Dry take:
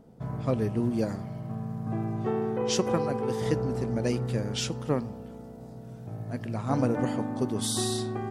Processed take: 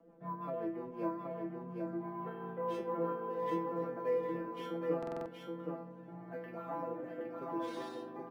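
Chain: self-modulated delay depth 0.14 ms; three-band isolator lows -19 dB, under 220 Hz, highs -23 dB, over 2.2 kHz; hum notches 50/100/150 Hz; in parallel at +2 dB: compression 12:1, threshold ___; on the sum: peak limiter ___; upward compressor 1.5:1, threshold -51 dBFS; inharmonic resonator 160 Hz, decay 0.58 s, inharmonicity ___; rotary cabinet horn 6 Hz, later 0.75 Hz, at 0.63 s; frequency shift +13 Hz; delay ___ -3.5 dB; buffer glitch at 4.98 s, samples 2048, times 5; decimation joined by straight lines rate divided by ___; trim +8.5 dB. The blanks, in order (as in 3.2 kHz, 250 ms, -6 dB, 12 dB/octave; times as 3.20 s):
-40 dBFS, -16.5 dBFS, 0.002, 771 ms, 3×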